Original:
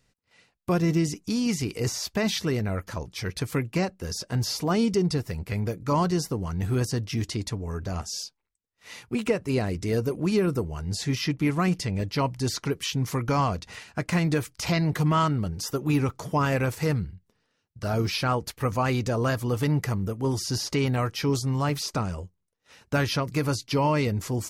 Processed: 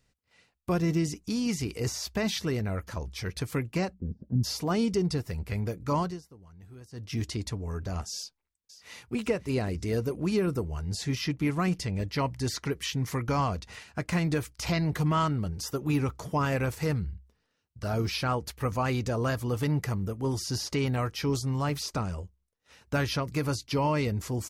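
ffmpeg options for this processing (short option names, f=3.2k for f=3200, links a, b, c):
-filter_complex "[0:a]asplit=3[a][b][c];[a]afade=t=out:st=3.93:d=0.02[d];[b]lowpass=f=230:t=q:w=2.4,afade=t=in:st=3.93:d=0.02,afade=t=out:st=4.43:d=0.02[e];[c]afade=t=in:st=4.43:d=0.02[f];[d][e][f]amix=inputs=3:normalize=0,asplit=2[g][h];[h]afade=t=in:st=8.15:d=0.01,afade=t=out:st=9.15:d=0.01,aecho=0:1:540|1080|1620:0.188365|0.0565095|0.0169528[i];[g][i]amix=inputs=2:normalize=0,asettb=1/sr,asplit=3[j][k][l];[j]atrim=end=12.074[m];[k]atrim=start=12.07:end=13.24,asetpts=PTS-STARTPTS,afade=t=in:d=0.004:c=qsin,afade=t=out:st=1.166:d=0.004:c=qsin,equalizer=f=1.9k:w=4:g=5.5[n];[l]atrim=start=13.236[o];[m][n]acrossfade=d=0.004:c1=hsin:c2=qsin[p];[p][o]acrossfade=d=0.004:c1=qsin:c2=hsin,asplit=3[q][r][s];[q]atrim=end=6.21,asetpts=PTS-STARTPTS,afade=t=out:st=5.96:d=0.25:silence=0.1[t];[r]atrim=start=6.21:end=6.91,asetpts=PTS-STARTPTS,volume=-20dB[u];[s]atrim=start=6.91,asetpts=PTS-STARTPTS,afade=t=in:d=0.25:silence=0.1[v];[t][u][v]concat=n=3:v=0:a=1,equalizer=f=65:t=o:w=0.29:g=14,volume=-3.5dB"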